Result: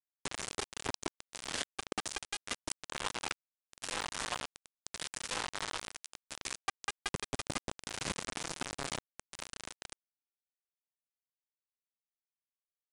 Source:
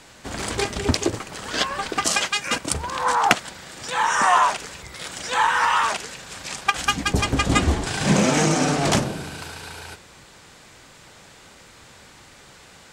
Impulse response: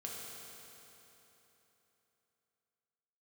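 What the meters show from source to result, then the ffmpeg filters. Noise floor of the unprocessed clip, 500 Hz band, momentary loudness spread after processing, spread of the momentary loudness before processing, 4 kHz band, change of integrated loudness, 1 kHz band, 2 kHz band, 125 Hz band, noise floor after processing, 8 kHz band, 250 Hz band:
-48 dBFS, -19.0 dB, 10 LU, 16 LU, -14.0 dB, -18.0 dB, -22.0 dB, -17.5 dB, -23.5 dB, under -85 dBFS, -13.5 dB, -22.0 dB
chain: -af "highpass=f=88:w=0.5412,highpass=f=88:w=1.3066,bandreject=f=123.3:t=h:w=4,bandreject=f=246.6:t=h:w=4,bandreject=f=369.9:t=h:w=4,bandreject=f=493.2:t=h:w=4,bandreject=f=616.5:t=h:w=4,bandreject=f=739.8:t=h:w=4,bandreject=f=863.1:t=h:w=4,bandreject=f=986.4:t=h:w=4,bandreject=f=1.1097k:t=h:w=4,bandreject=f=1.233k:t=h:w=4,bandreject=f=1.3563k:t=h:w=4,bandreject=f=1.4796k:t=h:w=4,bandreject=f=1.6029k:t=h:w=4,bandreject=f=1.7262k:t=h:w=4,bandreject=f=1.8495k:t=h:w=4,bandreject=f=1.9728k:t=h:w=4,bandreject=f=2.0961k:t=h:w=4,bandreject=f=2.2194k:t=h:w=4,bandreject=f=2.3427k:t=h:w=4,bandreject=f=2.466k:t=h:w=4,bandreject=f=2.5893k:t=h:w=4,bandreject=f=2.7126k:t=h:w=4,bandreject=f=2.8359k:t=h:w=4,bandreject=f=2.9592k:t=h:w=4,bandreject=f=3.0825k:t=h:w=4,bandreject=f=3.2058k:t=h:w=4,bandreject=f=3.3291k:t=h:w=4,bandreject=f=3.4524k:t=h:w=4,bandreject=f=3.5757k:t=h:w=4,bandreject=f=3.699k:t=h:w=4,bandreject=f=3.8223k:t=h:w=4,bandreject=f=3.9456k:t=h:w=4,bandreject=f=4.0689k:t=h:w=4,acompressor=threshold=-34dB:ratio=10,acrusher=bits=4:mix=0:aa=0.000001,aresample=22050,aresample=44100"

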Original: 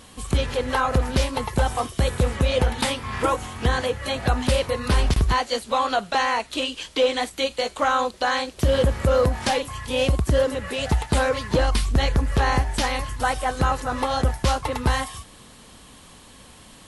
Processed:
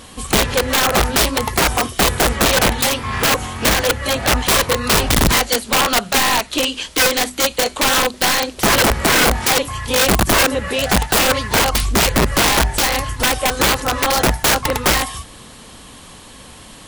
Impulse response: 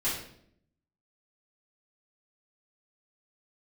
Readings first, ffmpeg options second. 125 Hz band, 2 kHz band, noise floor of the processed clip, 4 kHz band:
+1.0 dB, +10.5 dB, -40 dBFS, +11.5 dB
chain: -af "bandreject=f=50:t=h:w=6,bandreject=f=100:t=h:w=6,bandreject=f=150:t=h:w=6,bandreject=f=200:t=h:w=6,bandreject=f=250:t=h:w=6,aeval=exprs='(mod(6.68*val(0)+1,2)-1)/6.68':c=same,volume=8dB"

